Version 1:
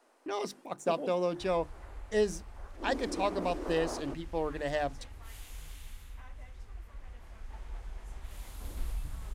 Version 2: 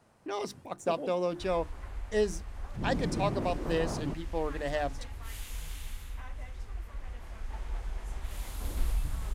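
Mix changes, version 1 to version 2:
first sound: remove Butterworth high-pass 250 Hz 96 dB per octave
second sound +6.0 dB

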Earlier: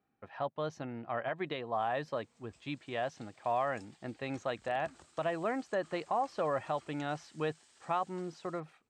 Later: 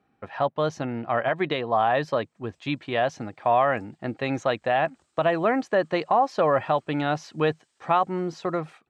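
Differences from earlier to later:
speech +11.5 dB
background −8.0 dB

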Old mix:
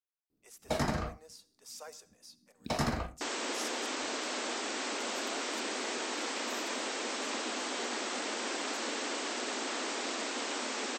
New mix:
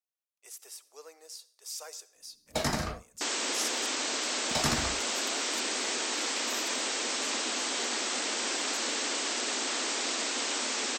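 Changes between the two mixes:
first sound: entry +1.85 s
master: add high-shelf EQ 2,600 Hz +9.5 dB

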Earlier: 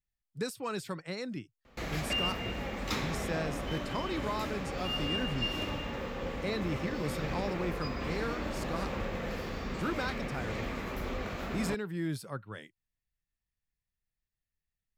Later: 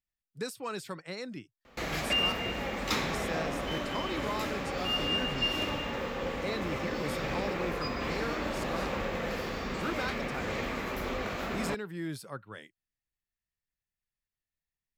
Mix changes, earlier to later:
background +4.5 dB
master: add low-shelf EQ 190 Hz −7.5 dB

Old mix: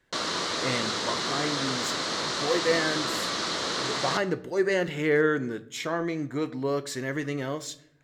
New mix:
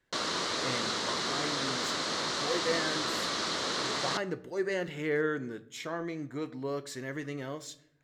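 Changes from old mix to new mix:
speech −7.0 dB
background: send −11.5 dB

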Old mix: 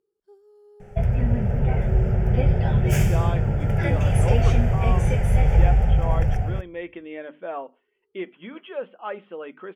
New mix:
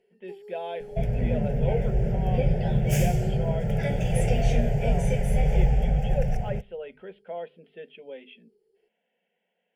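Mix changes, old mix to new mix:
speech: entry −2.60 s
first sound +11.5 dB
master: add phaser with its sweep stopped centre 310 Hz, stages 6

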